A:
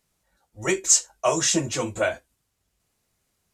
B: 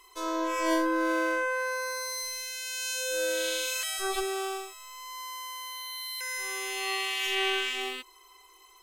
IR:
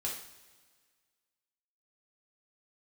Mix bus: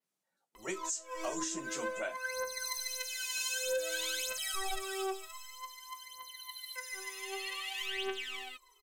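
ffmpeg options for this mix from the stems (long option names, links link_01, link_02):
-filter_complex "[0:a]highpass=frequency=180:width=0.5412,highpass=frequency=180:width=1.3066,adynamicequalizer=threshold=0.0224:dfrequency=7300:dqfactor=1.1:tfrequency=7300:tqfactor=1.1:attack=5:release=100:ratio=0.375:range=3:mode=boostabove:tftype=bell,volume=-14dB,asplit=2[link_01][link_02];[1:a]aphaser=in_gain=1:out_gain=1:delay=3.2:decay=0.79:speed=0.53:type=triangular,acontrast=75,adelay=550,volume=-13dB,afade=type=out:start_time=5.39:duration=0.37:silence=0.473151[link_03];[link_02]apad=whole_len=413235[link_04];[link_03][link_04]sidechaincompress=threshold=-45dB:ratio=5:attack=25:release=282[link_05];[link_01][link_05]amix=inputs=2:normalize=0,alimiter=level_in=2dB:limit=-24dB:level=0:latency=1:release=232,volume=-2dB"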